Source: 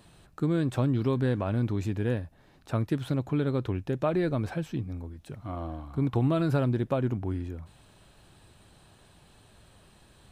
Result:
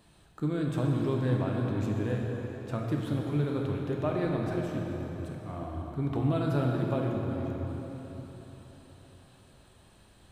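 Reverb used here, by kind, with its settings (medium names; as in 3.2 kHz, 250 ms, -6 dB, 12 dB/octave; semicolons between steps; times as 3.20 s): plate-style reverb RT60 4.2 s, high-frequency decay 0.8×, DRR -1 dB; trim -5 dB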